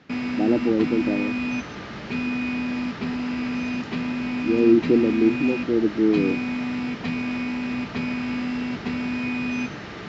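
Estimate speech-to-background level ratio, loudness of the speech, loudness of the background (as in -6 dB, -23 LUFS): 6.0 dB, -21.5 LUFS, -27.5 LUFS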